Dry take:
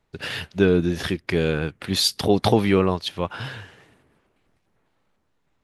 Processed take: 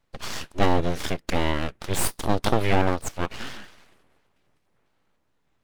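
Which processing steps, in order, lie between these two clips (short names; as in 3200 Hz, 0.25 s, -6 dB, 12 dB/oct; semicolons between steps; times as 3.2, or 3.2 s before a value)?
2.05–2.61 tube stage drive 7 dB, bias 0.65; full-wave rectifier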